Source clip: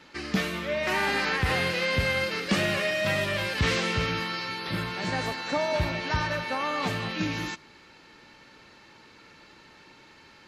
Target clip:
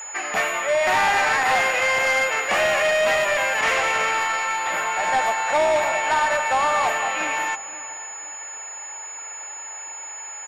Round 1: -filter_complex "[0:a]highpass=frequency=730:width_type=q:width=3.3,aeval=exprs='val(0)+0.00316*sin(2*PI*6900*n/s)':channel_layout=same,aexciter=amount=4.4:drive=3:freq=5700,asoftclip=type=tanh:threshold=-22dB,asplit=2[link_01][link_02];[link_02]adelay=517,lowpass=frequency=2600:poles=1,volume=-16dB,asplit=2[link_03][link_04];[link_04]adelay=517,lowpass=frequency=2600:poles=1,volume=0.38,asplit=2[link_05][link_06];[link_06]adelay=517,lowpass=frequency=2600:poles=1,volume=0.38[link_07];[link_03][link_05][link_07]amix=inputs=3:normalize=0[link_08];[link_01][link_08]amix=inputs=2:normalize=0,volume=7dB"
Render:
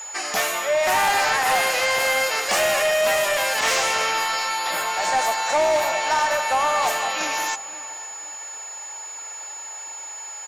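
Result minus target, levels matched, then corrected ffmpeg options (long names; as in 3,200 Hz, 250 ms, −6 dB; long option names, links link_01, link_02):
4,000 Hz band +4.5 dB
-filter_complex "[0:a]highpass=frequency=730:width_type=q:width=3.3,highshelf=frequency=3600:width_type=q:width=1.5:gain=-14,aeval=exprs='val(0)+0.00316*sin(2*PI*6900*n/s)':channel_layout=same,aexciter=amount=4.4:drive=3:freq=5700,asoftclip=type=tanh:threshold=-22dB,asplit=2[link_01][link_02];[link_02]adelay=517,lowpass=frequency=2600:poles=1,volume=-16dB,asplit=2[link_03][link_04];[link_04]adelay=517,lowpass=frequency=2600:poles=1,volume=0.38,asplit=2[link_05][link_06];[link_06]adelay=517,lowpass=frequency=2600:poles=1,volume=0.38[link_07];[link_03][link_05][link_07]amix=inputs=3:normalize=0[link_08];[link_01][link_08]amix=inputs=2:normalize=0,volume=7dB"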